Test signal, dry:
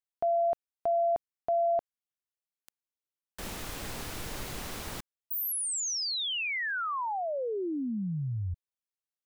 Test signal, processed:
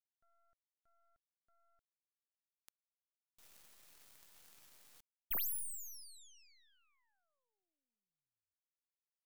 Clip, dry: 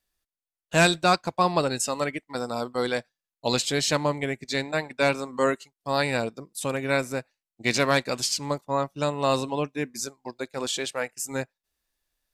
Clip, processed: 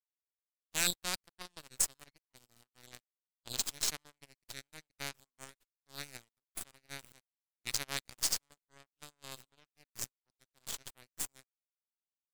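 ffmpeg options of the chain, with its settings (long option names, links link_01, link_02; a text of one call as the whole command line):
ffmpeg -i in.wav -af "aderivative,aeval=exprs='0.251*(cos(1*acos(clip(val(0)/0.251,-1,1)))-cos(1*PI/2))+0.0355*(cos(7*acos(clip(val(0)/0.251,-1,1)))-cos(7*PI/2))+0.0126*(cos(8*acos(clip(val(0)/0.251,-1,1)))-cos(8*PI/2))':channel_layout=same" out.wav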